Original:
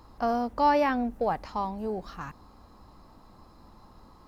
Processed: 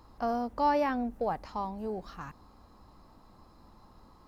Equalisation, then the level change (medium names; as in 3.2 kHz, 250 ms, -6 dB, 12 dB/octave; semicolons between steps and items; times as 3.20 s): dynamic bell 2.6 kHz, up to -3 dB, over -41 dBFS, Q 0.74; -3.5 dB